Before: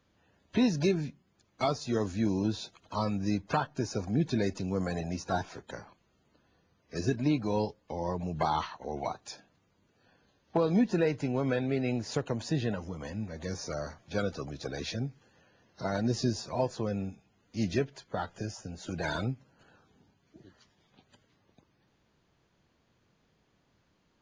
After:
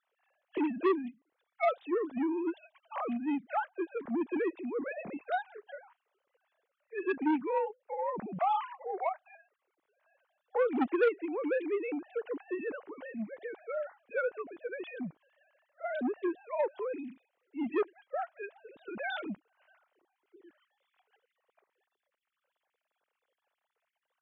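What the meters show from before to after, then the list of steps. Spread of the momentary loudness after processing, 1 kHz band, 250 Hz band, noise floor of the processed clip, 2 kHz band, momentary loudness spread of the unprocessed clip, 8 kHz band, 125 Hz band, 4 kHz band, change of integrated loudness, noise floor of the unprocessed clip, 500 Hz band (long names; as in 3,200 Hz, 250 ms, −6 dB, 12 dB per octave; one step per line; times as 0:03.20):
13 LU, +0.5 dB, −4.0 dB, below −85 dBFS, +1.0 dB, 11 LU, below −35 dB, −23.0 dB, −12.5 dB, −2.0 dB, −72 dBFS, 0.0 dB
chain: three sine waves on the formant tracks
high-frequency loss of the air 94 metres
saturating transformer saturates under 900 Hz
level −1 dB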